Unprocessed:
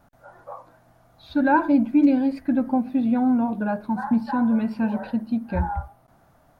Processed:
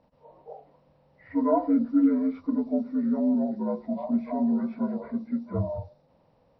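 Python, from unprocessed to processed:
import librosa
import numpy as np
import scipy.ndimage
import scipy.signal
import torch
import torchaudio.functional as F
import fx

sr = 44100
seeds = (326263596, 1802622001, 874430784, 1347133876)

y = fx.partial_stretch(x, sr, pct=75)
y = fx.env_lowpass(y, sr, base_hz=2900.0, full_db=-15.0)
y = y * 10.0 ** (-3.5 / 20.0)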